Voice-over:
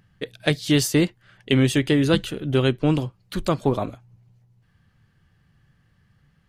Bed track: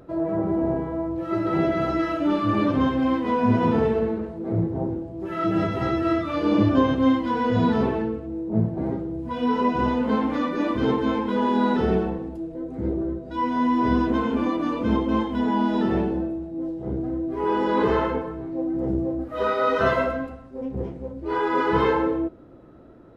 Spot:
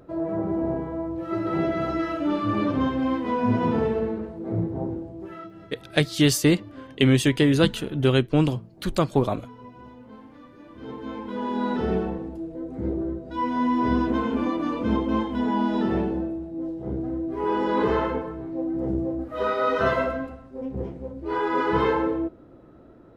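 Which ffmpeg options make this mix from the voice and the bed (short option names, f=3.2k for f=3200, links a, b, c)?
-filter_complex "[0:a]adelay=5500,volume=0dB[a];[1:a]volume=19dB,afade=t=out:st=5.09:d=0.41:silence=0.0944061,afade=t=in:st=10.7:d=1.48:silence=0.0841395[b];[a][b]amix=inputs=2:normalize=0"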